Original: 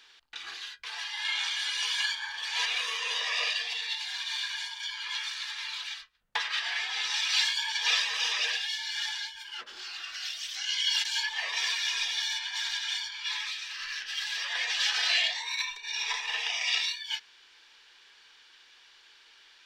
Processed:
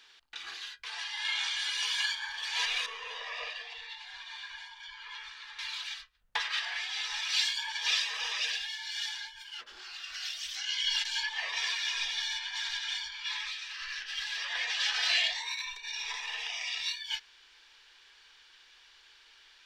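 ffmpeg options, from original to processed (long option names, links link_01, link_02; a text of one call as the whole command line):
ffmpeg -i in.wav -filter_complex "[0:a]asettb=1/sr,asplit=3[link_01][link_02][link_03];[link_01]atrim=end=0.874[link_04];[link_02]atrim=start=0.87:end=1.64,asetpts=PTS-STARTPTS,afade=type=in:duration=0.004:curve=qsin,afade=type=out:start_time=0.766:duration=0.004:curve=qsin,lowpass=frequency=11000:width=0.5412,lowpass=frequency=11000:width=1.3066[link_05];[link_03]atrim=start=1.636[link_06];[link_04][link_05]acrossfade=duration=0.004:curve1=hsin:curve2=qsin[link_07];[link_07][link_06]acrossfade=duration=0.004:curve1=qsin:curve2=hsin,asettb=1/sr,asplit=3[link_08][link_09][link_10];[link_08]atrim=end=2.864[link_11];[link_09]atrim=start=2.86:end=5.59,asetpts=PTS-STARTPTS,afade=type=in:duration=0.004:curve=qsin,afade=type=out:start_time=2.726:duration=0.004:curve=qsin,lowpass=frequency=1100:poles=1[link_12];[link_10]atrim=start=5.586[link_13];[link_11][link_12]acrossfade=duration=0.004:curve1=hsin:curve2=qsin[link_14];[link_14][link_13]acrossfade=duration=0.004:curve1=qsin:curve2=hsin,asettb=1/sr,asplit=3[link_15][link_16][link_17];[link_15]atrim=end=6.654[link_18];[link_16]atrim=start=6.65:end=10.1,asetpts=PTS-STARTPTS,afade=type=in:duration=0.004:curve=qsin,afade=type=out:start_time=3.446:duration=0.004:curve=qsin,acrossover=split=2100[link_19][link_20];[link_19]aeval=exprs='val(0)*(1-0.5/2+0.5/2*cos(2*PI*1.9*n/s))':channel_layout=same[link_21];[link_20]aeval=exprs='val(0)*(1-0.5/2-0.5/2*cos(2*PI*1.9*n/s))':channel_layout=same[link_22];[link_21][link_22]amix=inputs=2:normalize=0[link_23];[link_17]atrim=start=10.096[link_24];[link_18][link_23]acrossfade=duration=0.004:curve1=hsin:curve2=qsin[link_25];[link_25][link_24]acrossfade=duration=0.004:curve1=qsin:curve2=hsin,asettb=1/sr,asplit=3[link_26][link_27][link_28];[link_26]atrim=end=10.614[link_29];[link_27]atrim=start=10.61:end=15.02,asetpts=PTS-STARTPTS,afade=type=in:duration=0.004:curve=qsin,afade=type=out:start_time=4.406:duration=0.004:curve=qsin,highshelf=frequency=8100:gain=-9[link_30];[link_28]atrim=start=15.016[link_31];[link_29][link_30]acrossfade=duration=0.004:curve1=hsin:curve2=qsin[link_32];[link_32][link_31]acrossfade=duration=0.004:curve1=qsin:curve2=hsin,asettb=1/sr,asplit=3[link_33][link_34][link_35];[link_33]atrim=end=15.534[link_36];[link_34]atrim=start=15.53:end=16.86,asetpts=PTS-STARTPTS,afade=type=in:duration=0.004:curve=qsin,afade=type=out:start_time=1.326:duration=0.004:curve=qsin,acompressor=threshold=-33dB:ratio=2.5:attack=3.2:release=140:knee=1:detection=peak[link_37];[link_35]atrim=start=16.856[link_38];[link_36][link_37]acrossfade=duration=0.004:curve1=hsin:curve2=qsin[link_39];[link_39][link_38]acrossfade=duration=0.004:curve1=qsin:curve2=hsin,asubboost=boost=3:cutoff=99,volume=-1.5dB" out.wav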